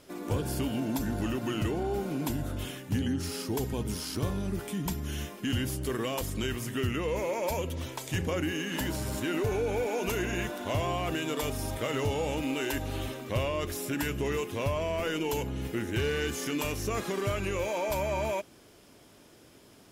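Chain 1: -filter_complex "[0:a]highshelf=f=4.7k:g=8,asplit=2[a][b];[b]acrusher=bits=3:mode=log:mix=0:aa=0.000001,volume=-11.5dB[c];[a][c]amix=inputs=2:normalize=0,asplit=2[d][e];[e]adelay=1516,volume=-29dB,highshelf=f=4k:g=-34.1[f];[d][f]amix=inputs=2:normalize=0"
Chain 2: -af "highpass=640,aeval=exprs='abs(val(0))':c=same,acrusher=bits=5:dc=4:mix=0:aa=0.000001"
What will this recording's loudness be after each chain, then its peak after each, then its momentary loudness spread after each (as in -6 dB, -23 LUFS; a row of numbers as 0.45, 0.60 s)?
-28.5, -39.5 LUFS; -13.5, -19.0 dBFS; 3, 5 LU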